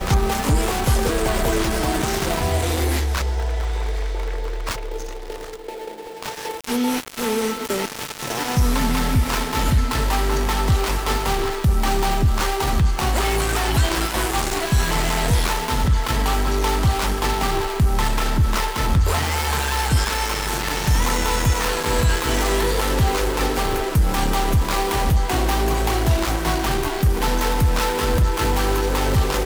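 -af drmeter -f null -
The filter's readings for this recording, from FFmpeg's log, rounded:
Channel 1: DR: 6.2
Overall DR: 6.2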